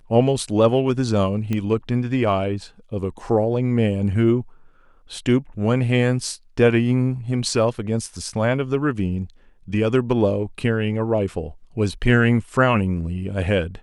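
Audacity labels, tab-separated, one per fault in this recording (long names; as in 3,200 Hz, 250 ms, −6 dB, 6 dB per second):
1.530000	1.530000	click −13 dBFS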